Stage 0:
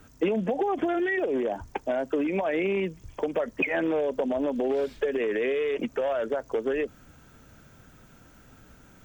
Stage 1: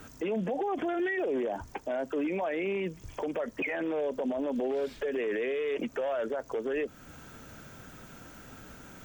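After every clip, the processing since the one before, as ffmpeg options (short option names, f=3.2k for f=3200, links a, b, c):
-af "lowshelf=f=130:g=-7,acompressor=threshold=-43dB:ratio=1.5,alimiter=level_in=7dB:limit=-24dB:level=0:latency=1:release=14,volume=-7dB,volume=6.5dB"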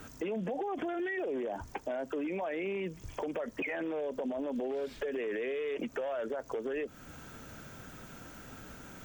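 -af "acompressor=threshold=-32dB:ratio=6"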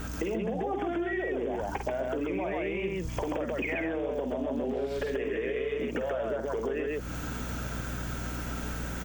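-af "aecho=1:1:49.56|134.1:0.447|0.891,aeval=exprs='val(0)+0.00562*(sin(2*PI*60*n/s)+sin(2*PI*2*60*n/s)/2+sin(2*PI*3*60*n/s)/3+sin(2*PI*4*60*n/s)/4+sin(2*PI*5*60*n/s)/5)':c=same,acompressor=threshold=-37dB:ratio=6,volume=8.5dB"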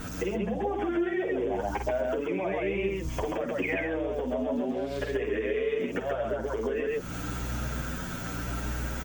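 -filter_complex "[0:a]asplit=2[a][b];[b]adelay=8.7,afreqshift=0.86[c];[a][c]amix=inputs=2:normalize=1,volume=4.5dB"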